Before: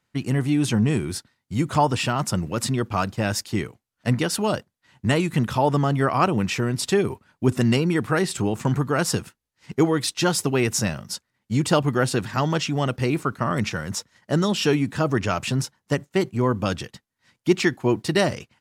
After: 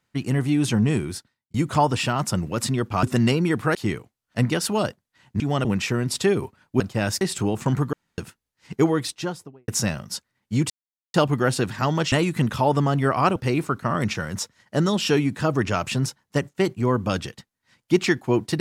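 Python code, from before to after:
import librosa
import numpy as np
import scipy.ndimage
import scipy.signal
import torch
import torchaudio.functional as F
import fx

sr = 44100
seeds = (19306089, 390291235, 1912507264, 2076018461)

y = fx.studio_fade_out(x, sr, start_s=9.82, length_s=0.85)
y = fx.edit(y, sr, fx.fade_out_span(start_s=0.99, length_s=0.55),
    fx.swap(start_s=3.03, length_s=0.41, other_s=7.48, other_length_s=0.72),
    fx.swap(start_s=5.09, length_s=1.24, other_s=12.67, other_length_s=0.25),
    fx.room_tone_fill(start_s=8.92, length_s=0.25),
    fx.insert_silence(at_s=11.69, length_s=0.44), tone=tone)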